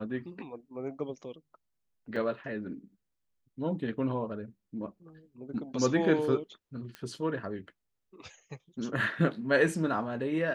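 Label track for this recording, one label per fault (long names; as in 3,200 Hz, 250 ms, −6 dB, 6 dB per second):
2.160000	2.160000	drop-out 3.5 ms
6.950000	6.950000	click −26 dBFS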